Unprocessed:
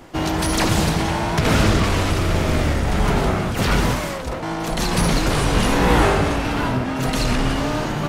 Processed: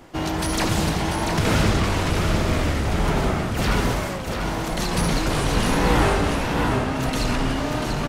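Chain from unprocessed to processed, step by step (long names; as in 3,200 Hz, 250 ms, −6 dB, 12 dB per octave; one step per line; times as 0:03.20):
single-tap delay 690 ms −6 dB
level −3.5 dB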